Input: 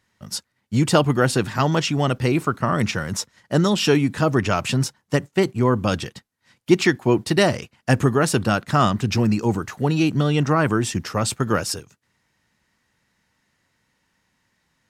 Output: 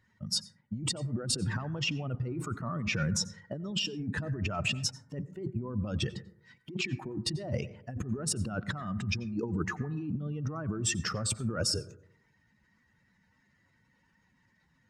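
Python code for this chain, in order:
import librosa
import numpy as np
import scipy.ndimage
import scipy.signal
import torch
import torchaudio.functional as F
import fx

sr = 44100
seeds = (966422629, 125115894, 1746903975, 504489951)

y = fx.spec_expand(x, sr, power=1.8)
y = fx.over_compress(y, sr, threshold_db=-27.0, ratio=-1.0)
y = fx.rev_plate(y, sr, seeds[0], rt60_s=0.69, hf_ratio=0.25, predelay_ms=80, drr_db=16.0)
y = y * librosa.db_to_amplitude(-7.0)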